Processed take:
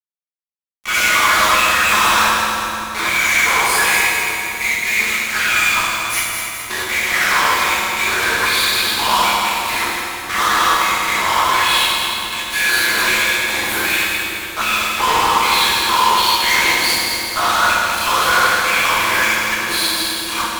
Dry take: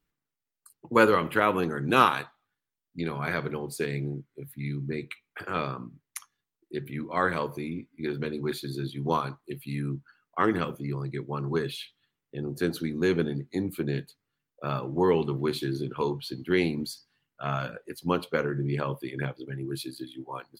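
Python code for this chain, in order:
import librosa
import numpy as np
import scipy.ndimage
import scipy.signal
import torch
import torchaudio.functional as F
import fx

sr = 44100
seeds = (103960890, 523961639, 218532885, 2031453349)

p1 = fx.phase_scramble(x, sr, seeds[0], window_ms=200)
p2 = fx.low_shelf(p1, sr, hz=270.0, db=-11.0)
p3 = fx.leveller(p2, sr, passes=3)
p4 = fx.level_steps(p3, sr, step_db=16)
p5 = p3 + F.gain(torch.from_numpy(p4), 0.5).numpy()
p6 = fx.filter_lfo_highpass(p5, sr, shape='square', hz=1.3, low_hz=990.0, high_hz=2300.0, q=3.4)
p7 = fx.fuzz(p6, sr, gain_db=31.0, gate_db=-31.0)
p8 = p7 + fx.echo_split(p7, sr, split_hz=430.0, low_ms=533, high_ms=210, feedback_pct=52, wet_db=-7.0, dry=0)
p9 = fx.rev_fdn(p8, sr, rt60_s=3.2, lf_ratio=1.0, hf_ratio=0.75, size_ms=28.0, drr_db=-4.0)
y = F.gain(torch.from_numpy(p9), -4.5).numpy()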